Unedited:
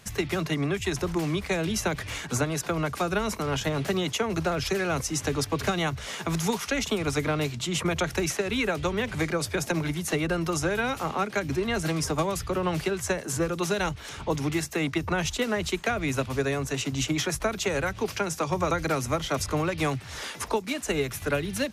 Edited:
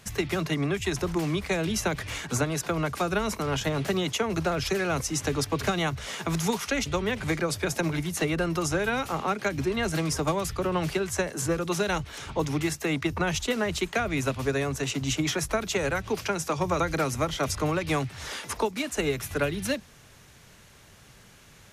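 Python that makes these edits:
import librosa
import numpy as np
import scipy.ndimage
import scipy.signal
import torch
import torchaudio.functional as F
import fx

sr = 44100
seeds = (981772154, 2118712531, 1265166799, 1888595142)

y = fx.edit(x, sr, fx.cut(start_s=6.86, length_s=1.91), tone=tone)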